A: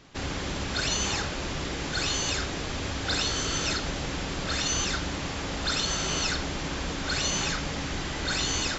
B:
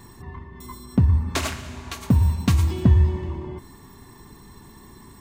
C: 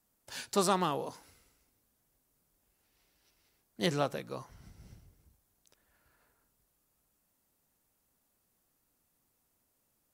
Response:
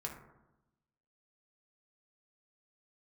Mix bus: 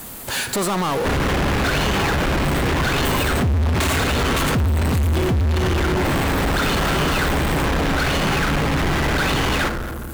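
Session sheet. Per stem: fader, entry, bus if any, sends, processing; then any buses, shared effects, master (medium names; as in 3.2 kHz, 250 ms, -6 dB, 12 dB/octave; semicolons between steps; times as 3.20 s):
-6.5 dB, 0.90 s, send -9 dB, low-pass 2.2 kHz 12 dB/octave
-2.0 dB, 2.45 s, no send, none
-7.5 dB, 0.00 s, send -14 dB, peak limiter -26 dBFS, peak gain reduction 11.5 dB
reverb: on, RT60 0.95 s, pre-delay 3 ms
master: peaking EQ 5.4 kHz -12 dB 0.35 oct; power-law waveshaper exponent 0.35; peak limiter -15 dBFS, peak gain reduction 7 dB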